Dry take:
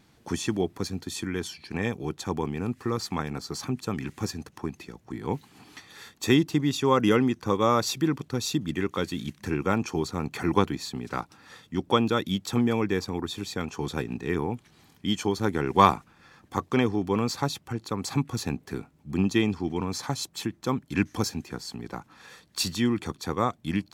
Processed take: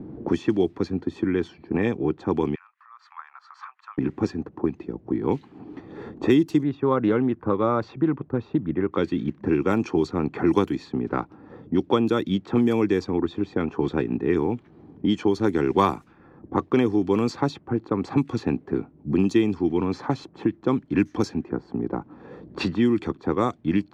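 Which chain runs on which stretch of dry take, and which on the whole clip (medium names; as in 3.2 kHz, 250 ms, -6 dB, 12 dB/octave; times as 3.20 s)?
2.55–3.98 s: treble shelf 4.7 kHz -8 dB + compression 2:1, threshold -38 dBFS + steep high-pass 1.1 kHz 48 dB/octave
6.63–8.93 s: low-pass 1.4 kHz + peaking EQ 310 Hz -5.5 dB 1.5 oct + loudspeaker Doppler distortion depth 0.13 ms
whole clip: level-controlled noise filter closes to 460 Hz, open at -19.5 dBFS; peaking EQ 330 Hz +8.5 dB 0.99 oct; three bands compressed up and down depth 70%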